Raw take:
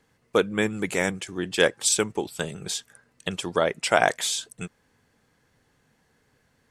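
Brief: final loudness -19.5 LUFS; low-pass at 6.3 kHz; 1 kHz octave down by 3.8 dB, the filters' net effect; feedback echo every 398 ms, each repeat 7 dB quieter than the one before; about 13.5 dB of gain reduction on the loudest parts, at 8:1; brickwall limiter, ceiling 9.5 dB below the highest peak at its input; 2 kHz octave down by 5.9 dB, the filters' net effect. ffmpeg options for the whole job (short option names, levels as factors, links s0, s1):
-af "lowpass=6300,equalizer=f=1000:t=o:g=-4.5,equalizer=f=2000:t=o:g=-6,acompressor=threshold=0.0282:ratio=8,alimiter=level_in=1.19:limit=0.0631:level=0:latency=1,volume=0.841,aecho=1:1:398|796|1194|1592|1990:0.447|0.201|0.0905|0.0407|0.0183,volume=8.41"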